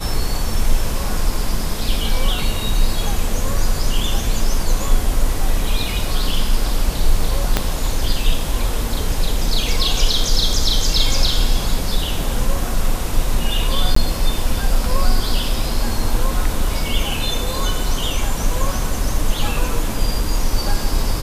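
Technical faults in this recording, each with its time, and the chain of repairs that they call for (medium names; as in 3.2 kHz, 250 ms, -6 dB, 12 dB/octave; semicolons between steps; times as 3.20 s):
7.57 s: pop 0 dBFS
13.95–13.96 s: dropout 14 ms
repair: de-click; interpolate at 13.95 s, 14 ms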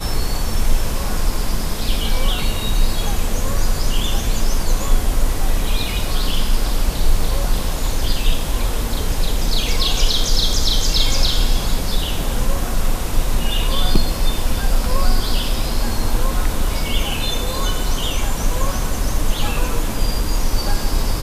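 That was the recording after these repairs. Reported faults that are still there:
7.57 s: pop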